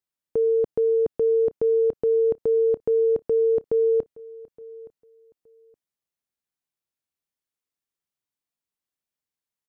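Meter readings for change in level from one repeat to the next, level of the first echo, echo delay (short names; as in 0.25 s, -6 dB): no steady repeat, -21.5 dB, 0.869 s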